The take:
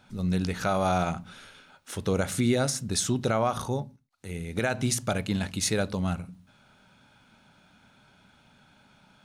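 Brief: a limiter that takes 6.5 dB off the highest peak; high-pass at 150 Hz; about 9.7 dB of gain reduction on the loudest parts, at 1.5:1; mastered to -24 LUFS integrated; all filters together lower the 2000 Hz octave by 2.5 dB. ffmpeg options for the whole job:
-af "highpass=150,equalizer=f=2k:t=o:g=-3.5,acompressor=threshold=-49dB:ratio=1.5,volume=16.5dB,alimiter=limit=-12dB:level=0:latency=1"

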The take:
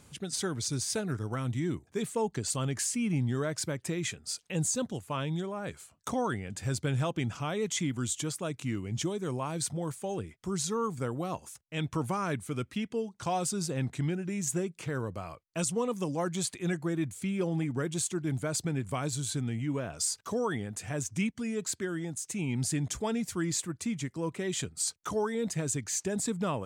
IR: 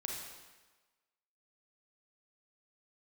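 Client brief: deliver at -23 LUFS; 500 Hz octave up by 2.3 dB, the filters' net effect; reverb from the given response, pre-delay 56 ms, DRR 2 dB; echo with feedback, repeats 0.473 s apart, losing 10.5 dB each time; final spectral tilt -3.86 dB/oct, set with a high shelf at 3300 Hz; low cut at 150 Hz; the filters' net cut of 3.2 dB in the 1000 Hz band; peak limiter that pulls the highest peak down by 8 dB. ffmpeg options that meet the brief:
-filter_complex "[0:a]highpass=150,equalizer=f=500:t=o:g=4,equalizer=f=1k:t=o:g=-6.5,highshelf=f=3.3k:g=7,alimiter=limit=-21dB:level=0:latency=1,aecho=1:1:473|946|1419:0.299|0.0896|0.0269,asplit=2[a][b];[1:a]atrim=start_sample=2205,adelay=56[c];[b][c]afir=irnorm=-1:irlink=0,volume=-2.5dB[d];[a][d]amix=inputs=2:normalize=0,volume=7dB"

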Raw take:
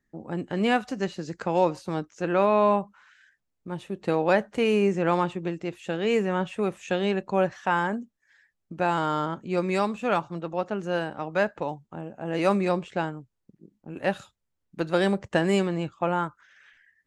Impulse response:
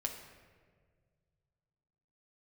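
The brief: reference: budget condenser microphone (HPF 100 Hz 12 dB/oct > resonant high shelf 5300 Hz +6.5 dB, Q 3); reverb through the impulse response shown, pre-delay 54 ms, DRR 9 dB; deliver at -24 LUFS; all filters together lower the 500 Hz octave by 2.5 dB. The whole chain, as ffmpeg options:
-filter_complex "[0:a]equalizer=f=500:t=o:g=-3,asplit=2[a][b];[1:a]atrim=start_sample=2205,adelay=54[c];[b][c]afir=irnorm=-1:irlink=0,volume=-9.5dB[d];[a][d]amix=inputs=2:normalize=0,highpass=100,highshelf=f=5.3k:t=q:w=3:g=6.5,volume=3.5dB"

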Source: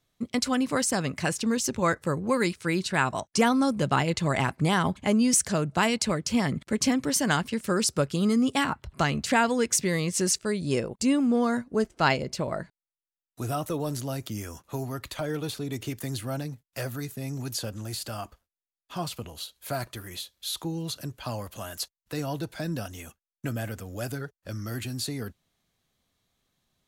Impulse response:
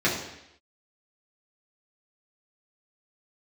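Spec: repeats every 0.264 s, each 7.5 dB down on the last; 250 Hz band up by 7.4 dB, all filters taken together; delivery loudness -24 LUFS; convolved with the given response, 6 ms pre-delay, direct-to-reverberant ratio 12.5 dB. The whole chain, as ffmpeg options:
-filter_complex "[0:a]equalizer=f=250:t=o:g=8.5,aecho=1:1:264|528|792|1056|1320:0.422|0.177|0.0744|0.0312|0.0131,asplit=2[a][b];[1:a]atrim=start_sample=2205,adelay=6[c];[b][c]afir=irnorm=-1:irlink=0,volume=-27.5dB[d];[a][d]amix=inputs=2:normalize=0,volume=-1.5dB"

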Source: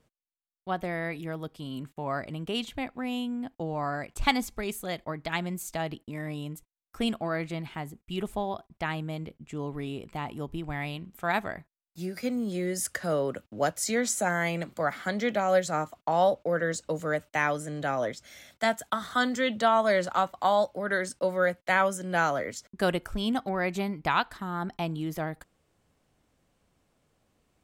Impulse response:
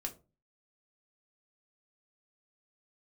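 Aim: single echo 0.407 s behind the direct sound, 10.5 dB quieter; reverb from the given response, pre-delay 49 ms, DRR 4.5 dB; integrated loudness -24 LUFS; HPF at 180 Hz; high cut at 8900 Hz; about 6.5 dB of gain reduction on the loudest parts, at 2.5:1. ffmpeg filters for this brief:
-filter_complex "[0:a]highpass=180,lowpass=8.9k,acompressor=threshold=-28dB:ratio=2.5,aecho=1:1:407:0.299,asplit=2[a][b];[1:a]atrim=start_sample=2205,adelay=49[c];[b][c]afir=irnorm=-1:irlink=0,volume=-4dB[d];[a][d]amix=inputs=2:normalize=0,volume=8dB"

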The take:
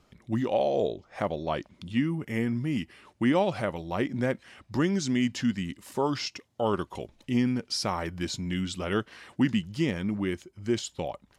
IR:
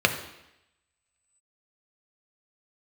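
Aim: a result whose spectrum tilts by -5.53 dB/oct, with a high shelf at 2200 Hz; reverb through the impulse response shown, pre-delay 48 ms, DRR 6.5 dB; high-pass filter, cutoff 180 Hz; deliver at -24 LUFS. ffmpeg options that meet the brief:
-filter_complex "[0:a]highpass=180,highshelf=f=2.2k:g=-7.5,asplit=2[a][b];[1:a]atrim=start_sample=2205,adelay=48[c];[b][c]afir=irnorm=-1:irlink=0,volume=-23dB[d];[a][d]amix=inputs=2:normalize=0,volume=6.5dB"

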